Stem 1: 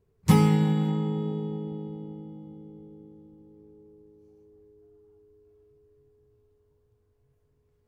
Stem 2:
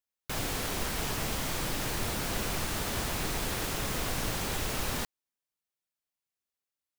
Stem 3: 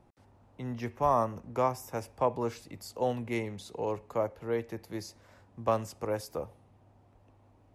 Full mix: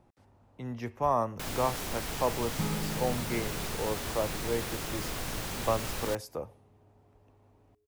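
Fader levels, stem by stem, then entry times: -14.5 dB, -3.5 dB, -1.0 dB; 2.30 s, 1.10 s, 0.00 s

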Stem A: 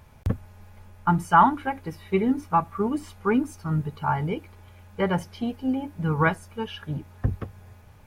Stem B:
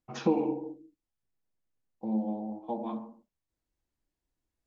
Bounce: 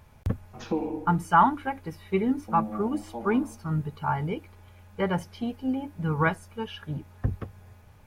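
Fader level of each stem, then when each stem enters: -2.5 dB, -2.5 dB; 0.00 s, 0.45 s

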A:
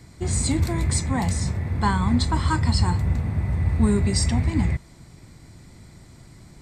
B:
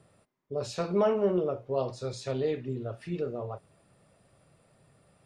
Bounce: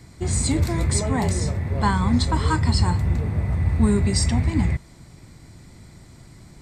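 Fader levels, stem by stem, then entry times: +1.0 dB, -6.0 dB; 0.00 s, 0.00 s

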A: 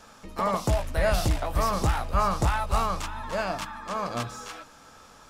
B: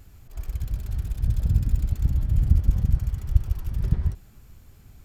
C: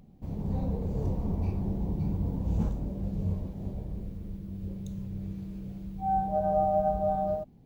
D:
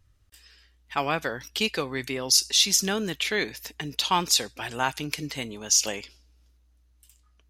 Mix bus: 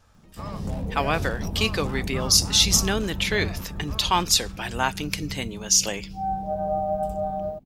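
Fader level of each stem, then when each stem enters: -12.5 dB, -18.0 dB, 0.0 dB, +2.0 dB; 0.00 s, 1.40 s, 0.15 s, 0.00 s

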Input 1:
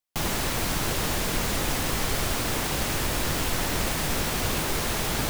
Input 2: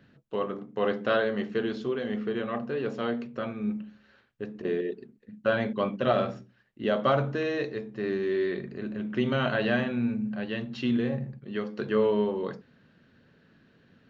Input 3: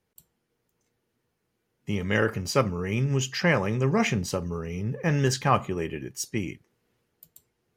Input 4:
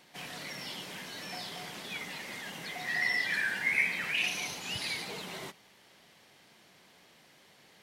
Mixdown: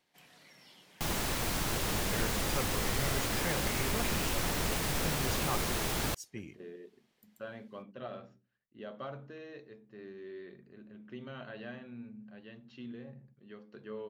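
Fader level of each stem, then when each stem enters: -6.0 dB, -18.5 dB, -15.0 dB, -17.0 dB; 0.85 s, 1.95 s, 0.00 s, 0.00 s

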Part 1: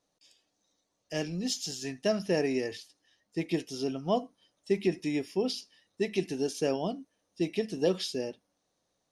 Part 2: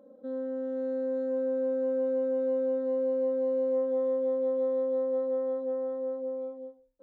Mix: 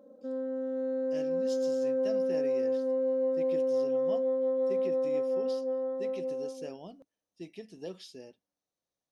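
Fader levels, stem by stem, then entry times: -14.0 dB, -0.5 dB; 0.00 s, 0.00 s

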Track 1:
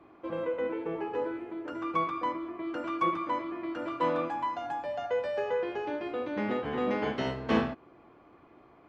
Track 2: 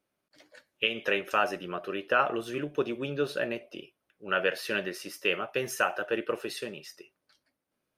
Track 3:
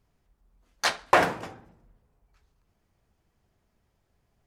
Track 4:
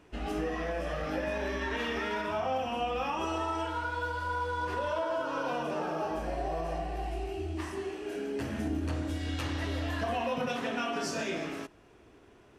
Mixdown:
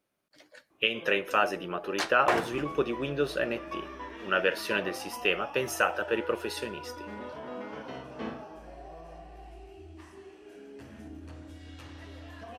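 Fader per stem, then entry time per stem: -11.5 dB, +1.0 dB, -6.5 dB, -12.5 dB; 0.70 s, 0.00 s, 1.15 s, 2.40 s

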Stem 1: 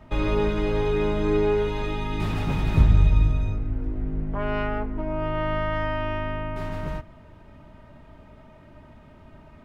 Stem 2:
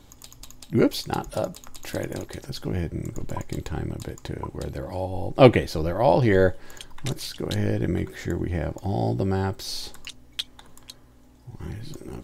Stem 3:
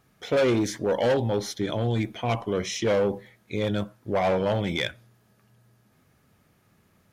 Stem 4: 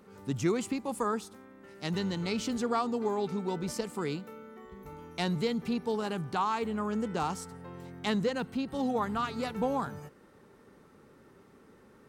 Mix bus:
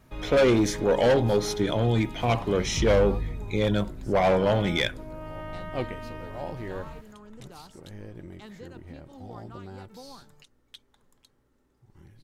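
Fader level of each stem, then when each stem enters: -12.0 dB, -18.0 dB, +2.0 dB, -16.5 dB; 0.00 s, 0.35 s, 0.00 s, 0.35 s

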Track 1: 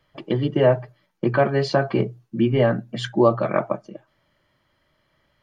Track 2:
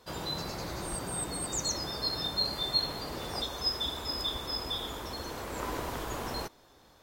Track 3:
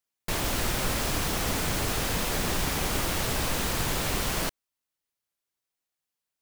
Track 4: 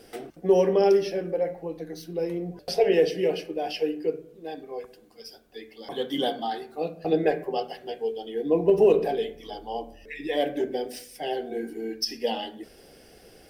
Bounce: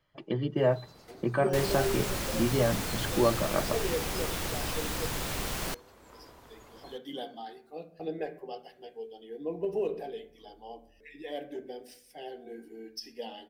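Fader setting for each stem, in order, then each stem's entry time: -8.5 dB, -18.0 dB, -5.5 dB, -12.5 dB; 0.00 s, 0.50 s, 1.25 s, 0.95 s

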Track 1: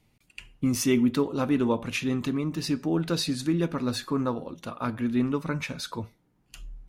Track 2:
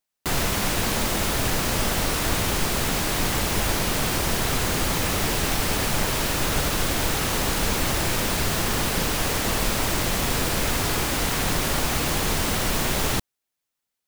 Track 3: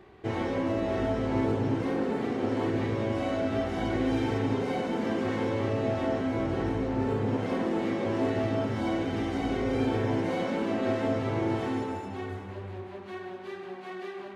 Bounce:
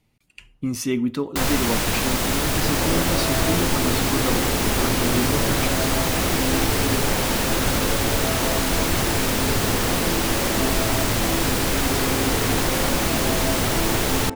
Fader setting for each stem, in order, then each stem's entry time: -0.5 dB, +1.5 dB, +1.5 dB; 0.00 s, 1.10 s, 2.40 s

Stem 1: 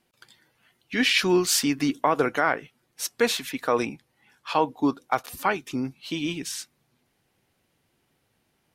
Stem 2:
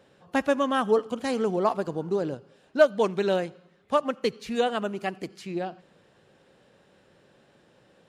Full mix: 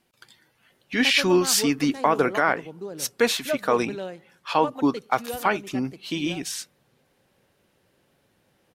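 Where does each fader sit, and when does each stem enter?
+1.5 dB, -9.0 dB; 0.00 s, 0.70 s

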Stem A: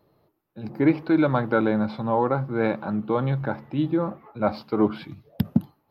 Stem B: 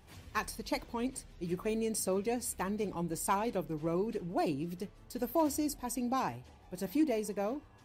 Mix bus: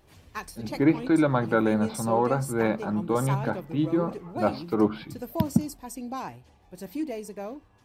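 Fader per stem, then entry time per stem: -1.5 dB, -1.5 dB; 0.00 s, 0.00 s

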